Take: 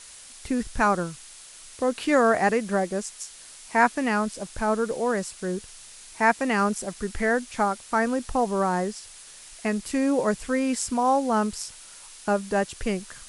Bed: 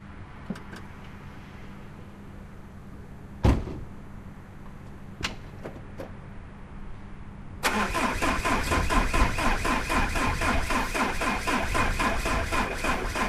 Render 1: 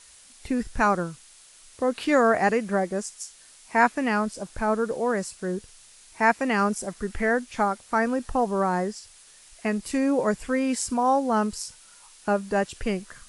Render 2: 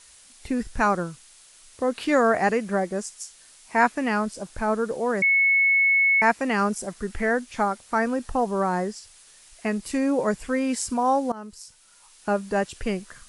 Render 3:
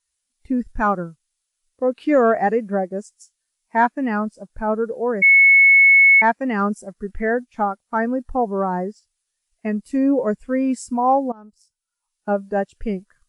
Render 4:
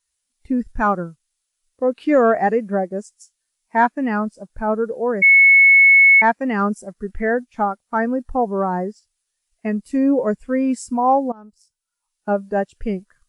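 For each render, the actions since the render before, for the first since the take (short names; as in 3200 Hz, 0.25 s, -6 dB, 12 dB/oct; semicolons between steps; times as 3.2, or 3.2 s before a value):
noise print and reduce 6 dB
5.22–6.22 bleep 2200 Hz -16 dBFS; 11.32–12.36 fade in, from -19 dB
sample leveller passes 1; spectral expander 1.5:1
gain +1 dB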